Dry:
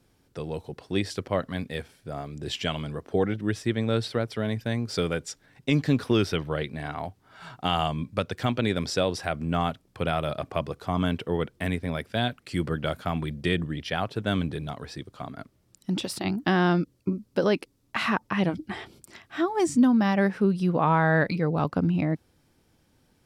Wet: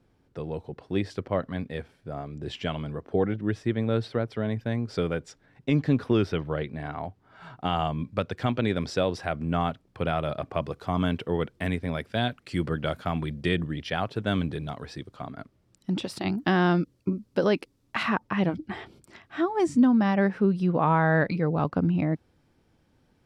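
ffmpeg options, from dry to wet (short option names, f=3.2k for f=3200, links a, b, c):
-af "asetnsamples=n=441:p=0,asendcmd='8 lowpass f 2800;10.62 lowpass f 5300;15.16 lowpass f 3200;16.17 lowpass f 6100;18.03 lowpass f 2700',lowpass=f=1.7k:p=1"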